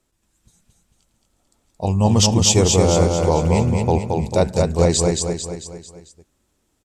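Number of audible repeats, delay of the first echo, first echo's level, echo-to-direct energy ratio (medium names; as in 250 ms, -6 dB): 5, 223 ms, -3.5 dB, -2.5 dB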